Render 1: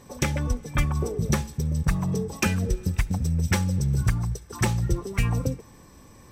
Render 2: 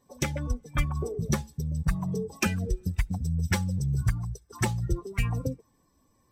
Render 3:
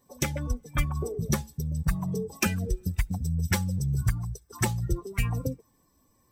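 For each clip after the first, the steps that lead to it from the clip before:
spectral dynamics exaggerated over time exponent 1.5; level −1 dB
high-shelf EQ 11,000 Hz +11.5 dB

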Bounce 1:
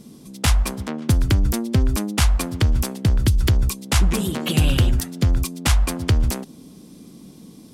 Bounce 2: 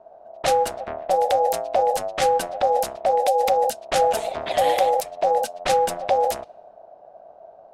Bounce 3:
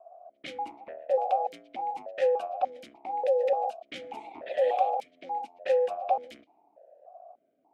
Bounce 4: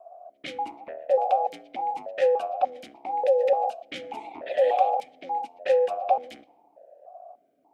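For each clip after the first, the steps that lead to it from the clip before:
frequency shifter −210 Hz; low-pass that shuts in the quiet parts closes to 750 Hz, open at −14 dBFS; ring modulation 660 Hz
formant filter that steps through the vowels 3.4 Hz
rectangular room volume 3,300 cubic metres, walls furnished, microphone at 0.31 metres; level +4 dB

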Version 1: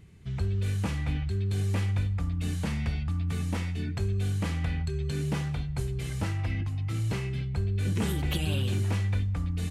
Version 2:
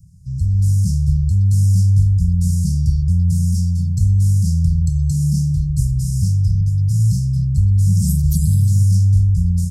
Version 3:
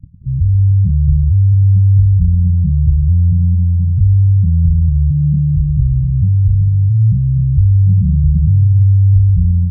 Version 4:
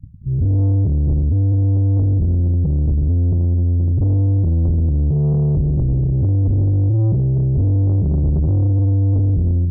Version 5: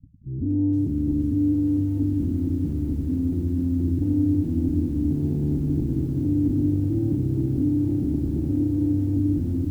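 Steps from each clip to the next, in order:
Chebyshev band-stop filter 180–5,100 Hz, order 5; automatic gain control gain up to 7 dB; level +8 dB
in parallel at −9 dB: fuzz pedal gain 42 dB, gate −40 dBFS; on the sum: low-shelf EQ 280 Hz +9 dB; gate on every frequency bin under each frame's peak −15 dB strong; level −6 dB
automatic gain control gain up to 9 dB; mains-hum notches 60/120/180 Hz; soft clipping −13 dBFS, distortion −11 dB
dynamic equaliser 250 Hz, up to +7 dB, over −39 dBFS, Q 2.4; formant resonators in series u; feedback echo at a low word length 470 ms, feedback 80%, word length 9 bits, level −7.5 dB; level +1 dB

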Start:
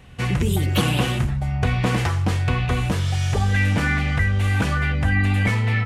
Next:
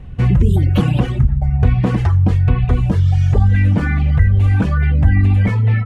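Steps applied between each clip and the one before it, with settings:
reverb reduction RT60 1.3 s
spectral tilt −3.5 dB per octave
in parallel at +1.5 dB: brickwall limiter −8.5 dBFS, peak gain reduction 9.5 dB
on the sum: level −5.5 dB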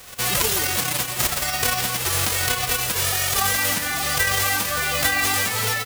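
spectral envelope flattened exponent 0.1
on a send: single-tap delay 170 ms −9.5 dB
on the sum: level −10 dB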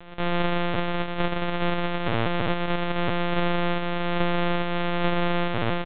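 samples sorted by size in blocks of 128 samples
in parallel at −4 dB: hard clipping −17.5 dBFS, distortion −14 dB
on the sum: linear-prediction vocoder at 8 kHz pitch kept
level −5 dB

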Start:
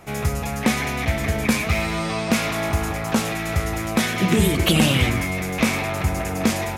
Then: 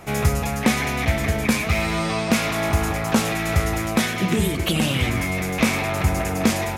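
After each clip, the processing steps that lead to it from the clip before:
speech leveller 0.5 s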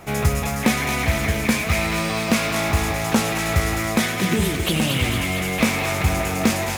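log-companded quantiser 6 bits
feedback echo with a high-pass in the loop 227 ms, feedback 70%, high-pass 1,100 Hz, level −5 dB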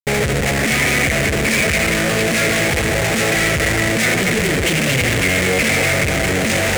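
spectral magnitudes quantised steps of 15 dB
comparator with hysteresis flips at −28.5 dBFS
octave-band graphic EQ 125/500/1,000/2,000/8,000 Hz +5/+9/−8/+12/+8 dB

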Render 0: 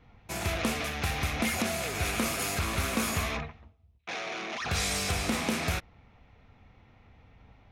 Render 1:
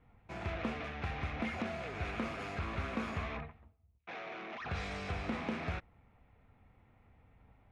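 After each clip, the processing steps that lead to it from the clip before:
low-pass filter 2,300 Hz 12 dB per octave
level −7 dB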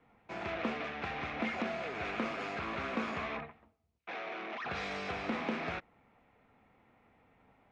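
three-way crossover with the lows and the highs turned down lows −17 dB, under 180 Hz, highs −18 dB, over 7,300 Hz
level +3.5 dB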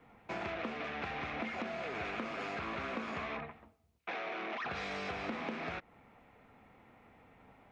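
downward compressor, threshold −42 dBFS, peak gain reduction 12 dB
level +5.5 dB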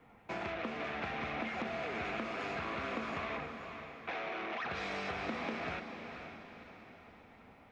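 feedback delay with all-pass diffusion 500 ms, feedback 46%, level −7.5 dB

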